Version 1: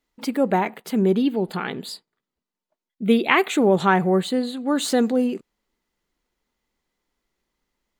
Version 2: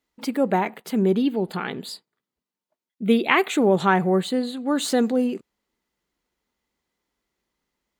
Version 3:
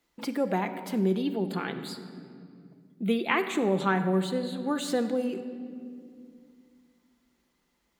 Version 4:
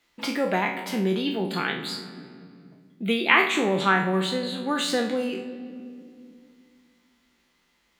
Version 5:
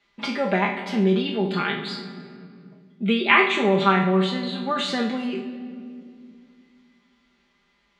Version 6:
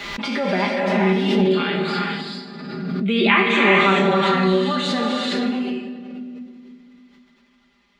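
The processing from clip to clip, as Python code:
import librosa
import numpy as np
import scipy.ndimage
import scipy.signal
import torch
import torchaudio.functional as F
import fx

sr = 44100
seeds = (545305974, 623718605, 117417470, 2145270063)

y1 = scipy.signal.sosfilt(scipy.signal.butter(2, 47.0, 'highpass', fs=sr, output='sos'), x)
y1 = y1 * librosa.db_to_amplitude(-1.0)
y2 = fx.room_shoebox(y1, sr, seeds[0], volume_m3=2400.0, walls='mixed', distance_m=0.79)
y2 = fx.band_squash(y2, sr, depth_pct=40)
y2 = y2 * librosa.db_to_amplitude(-7.0)
y3 = fx.spec_trails(y2, sr, decay_s=0.44)
y3 = fx.peak_eq(y3, sr, hz=2700.0, db=9.0, octaves=2.5)
y4 = scipy.signal.sosfilt(scipy.signal.butter(2, 4400.0, 'lowpass', fs=sr, output='sos'), y3)
y4 = y4 + 0.83 * np.pad(y4, (int(5.0 * sr / 1000.0), 0))[:len(y4)]
y4 = fx.echo_feedback(y4, sr, ms=101, feedback_pct=52, wet_db=-17.5)
y5 = fx.rev_gated(y4, sr, seeds[1], gate_ms=470, shape='rising', drr_db=-1.5)
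y5 = fx.pre_swell(y5, sr, db_per_s=29.0)
y5 = y5 * librosa.db_to_amplitude(-1.0)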